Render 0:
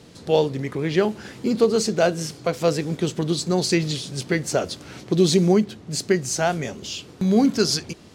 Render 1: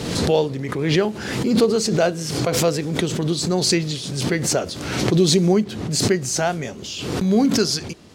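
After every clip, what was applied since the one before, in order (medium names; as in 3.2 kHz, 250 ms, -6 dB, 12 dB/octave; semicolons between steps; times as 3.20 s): swell ahead of each attack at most 42 dB/s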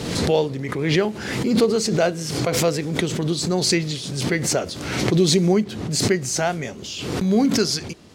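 dynamic bell 2.1 kHz, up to +4 dB, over -42 dBFS, Q 4.2; trim -1 dB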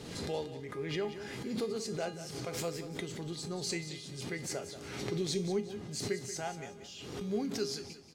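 feedback comb 410 Hz, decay 0.36 s, harmonics all, mix 80%; feedback delay 183 ms, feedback 32%, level -12 dB; trim -5 dB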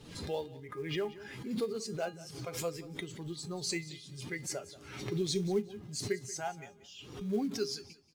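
expander on every frequency bin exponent 1.5; in parallel at -7 dB: short-mantissa float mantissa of 2-bit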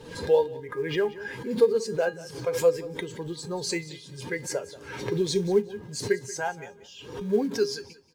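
small resonant body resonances 490/930/1600 Hz, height 14 dB, ringing for 35 ms; trim +4 dB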